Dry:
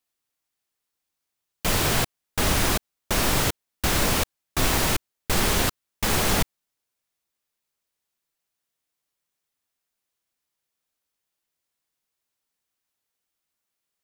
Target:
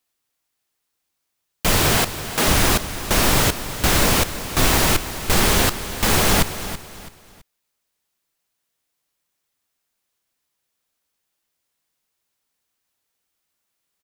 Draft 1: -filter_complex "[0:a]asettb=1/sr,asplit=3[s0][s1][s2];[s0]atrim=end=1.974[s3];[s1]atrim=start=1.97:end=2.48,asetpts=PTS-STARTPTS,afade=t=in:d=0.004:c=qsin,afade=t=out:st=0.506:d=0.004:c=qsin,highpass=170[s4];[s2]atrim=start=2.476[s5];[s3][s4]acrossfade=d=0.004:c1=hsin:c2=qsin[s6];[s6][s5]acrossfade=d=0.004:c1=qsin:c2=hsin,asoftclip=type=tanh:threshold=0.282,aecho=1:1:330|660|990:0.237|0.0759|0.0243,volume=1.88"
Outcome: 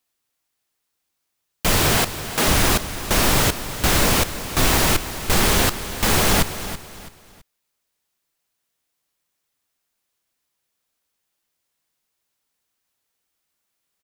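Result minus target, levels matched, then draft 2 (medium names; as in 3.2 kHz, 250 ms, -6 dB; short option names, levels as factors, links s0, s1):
saturation: distortion +13 dB
-filter_complex "[0:a]asettb=1/sr,asplit=3[s0][s1][s2];[s0]atrim=end=1.974[s3];[s1]atrim=start=1.97:end=2.48,asetpts=PTS-STARTPTS,afade=t=in:d=0.004:c=qsin,afade=t=out:st=0.506:d=0.004:c=qsin,highpass=170[s4];[s2]atrim=start=2.476[s5];[s3][s4]acrossfade=d=0.004:c1=hsin:c2=qsin[s6];[s6][s5]acrossfade=d=0.004:c1=qsin:c2=hsin,asoftclip=type=tanh:threshold=0.631,aecho=1:1:330|660|990:0.237|0.0759|0.0243,volume=1.88"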